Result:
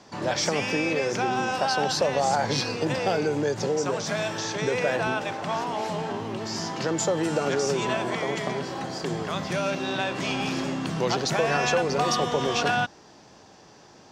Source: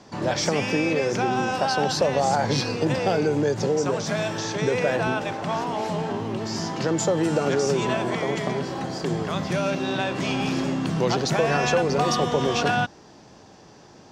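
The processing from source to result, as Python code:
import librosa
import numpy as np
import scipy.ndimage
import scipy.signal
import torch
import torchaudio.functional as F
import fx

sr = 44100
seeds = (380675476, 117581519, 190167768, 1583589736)

y = fx.low_shelf(x, sr, hz=460.0, db=-5.5)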